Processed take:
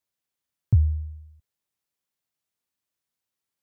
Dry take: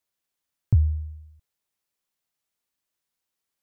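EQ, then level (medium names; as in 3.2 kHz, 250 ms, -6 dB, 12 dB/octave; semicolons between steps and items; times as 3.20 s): high-pass 77 Hz; bass shelf 140 Hz +8 dB; -3.0 dB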